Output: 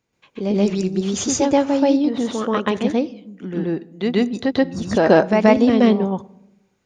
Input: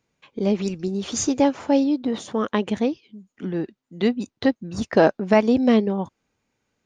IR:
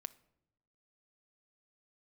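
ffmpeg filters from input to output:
-filter_complex "[0:a]asplit=2[a][b];[1:a]atrim=start_sample=2205,adelay=130[c];[b][c]afir=irnorm=-1:irlink=0,volume=8dB[d];[a][d]amix=inputs=2:normalize=0,volume=-1.5dB"

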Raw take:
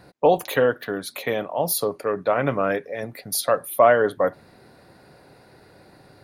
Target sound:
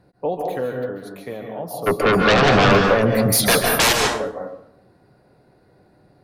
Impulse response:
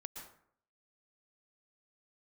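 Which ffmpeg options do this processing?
-filter_complex "[0:a]tiltshelf=f=780:g=5,asplit=3[a][b][c];[a]afade=t=out:st=1.86:d=0.02[d];[b]aeval=exprs='0.668*sin(PI/2*8.91*val(0)/0.668)':c=same,afade=t=in:st=1.86:d=0.02,afade=t=out:st=3.92:d=0.02[e];[c]afade=t=in:st=3.92:d=0.02[f];[d][e][f]amix=inputs=3:normalize=0[g];[1:a]atrim=start_sample=2205,asetrate=37044,aresample=44100[h];[g][h]afir=irnorm=-1:irlink=0,volume=-4dB"

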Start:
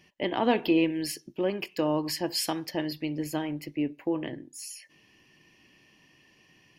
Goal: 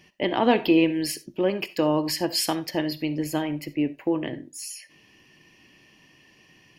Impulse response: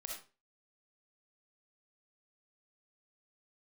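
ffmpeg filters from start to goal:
-filter_complex "[0:a]asplit=2[a][b];[1:a]atrim=start_sample=2205,atrim=end_sample=4410[c];[b][c]afir=irnorm=-1:irlink=0,volume=-9dB[d];[a][d]amix=inputs=2:normalize=0,volume=3dB"

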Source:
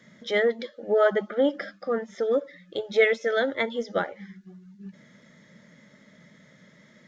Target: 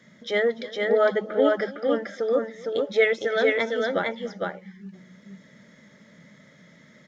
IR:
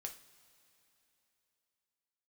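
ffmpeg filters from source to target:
-af "aecho=1:1:292|458:0.1|0.708"

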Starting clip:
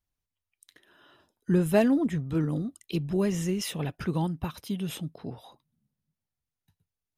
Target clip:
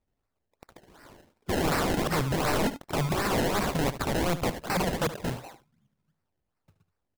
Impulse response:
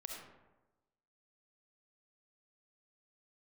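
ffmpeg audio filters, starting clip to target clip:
-filter_complex "[0:a]asettb=1/sr,asplit=3[a][b][c];[a]atrim=end=4.384[d];[b]atrim=start=4.38:end=5.27,asetpts=PTS-STARTPTS,afade=t=in:d=0.004:c=qsin,afade=t=out:st=0.886:d=0.004:c=qsin,aecho=1:1:5.2:0.63,atrim=end_sample=39249[e];[c]atrim=start=5.266[f];[d][e]acrossfade=d=0.004:c1=hsin:c2=qsin[g];[g][f]acrossfade=d=0.004:c1=qsin:c2=hsin,acrusher=samples=26:mix=1:aa=0.000001:lfo=1:lforange=26:lforate=2.7,aeval=exprs='(mod(25.1*val(0)+1,2)-1)/25.1':c=same,aecho=1:1:74:0.224,volume=6.5dB"

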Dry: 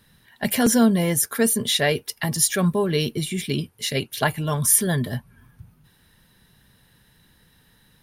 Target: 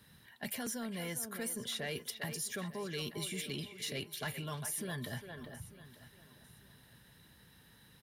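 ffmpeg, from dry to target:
-filter_complex "[0:a]highpass=52,areverse,acompressor=threshold=-27dB:ratio=6,areverse,asplit=2[a][b];[b]adelay=400,highpass=300,lowpass=3.4k,asoftclip=type=hard:threshold=-23dB,volume=-9dB[c];[a][c]amix=inputs=2:normalize=0,acrossover=split=510|1200[d][e][f];[d]acompressor=threshold=-38dB:ratio=4[g];[e]acompressor=threshold=-45dB:ratio=4[h];[f]acompressor=threshold=-33dB:ratio=4[i];[g][h][i]amix=inputs=3:normalize=0,asplit=2[j][k];[k]aecho=0:1:896|1792:0.126|0.0352[l];[j][l]amix=inputs=2:normalize=0,asoftclip=type=tanh:threshold=-25dB,volume=-3.5dB"

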